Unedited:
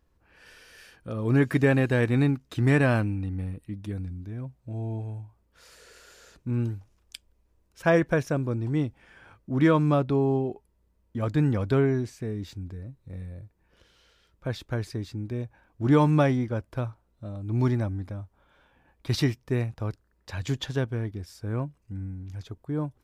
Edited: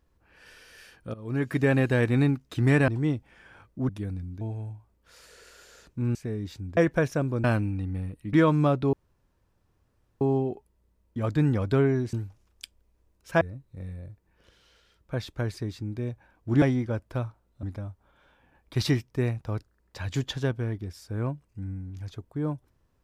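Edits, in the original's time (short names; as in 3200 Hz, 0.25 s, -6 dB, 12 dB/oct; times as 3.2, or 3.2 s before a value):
1.14–1.8 fade in, from -16 dB
2.88–3.77 swap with 8.59–9.6
4.29–4.9 cut
6.64–7.92 swap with 12.12–12.74
10.2 insert room tone 1.28 s
15.95–16.24 cut
17.25–17.96 cut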